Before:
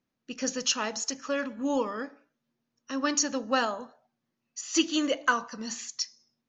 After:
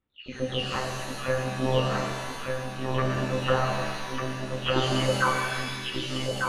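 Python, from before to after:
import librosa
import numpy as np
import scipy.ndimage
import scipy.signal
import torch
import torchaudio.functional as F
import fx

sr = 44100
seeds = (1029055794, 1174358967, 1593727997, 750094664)

y = fx.spec_delay(x, sr, highs='early', ms=326)
y = y + 10.0 ** (-4.5 / 20.0) * np.pad(y, (int(1196 * sr / 1000.0), 0))[:len(y)]
y = fx.lpc_monotone(y, sr, seeds[0], pitch_hz=130.0, order=16)
y = fx.rev_shimmer(y, sr, seeds[1], rt60_s=1.5, semitones=7, shimmer_db=-2, drr_db=2.5)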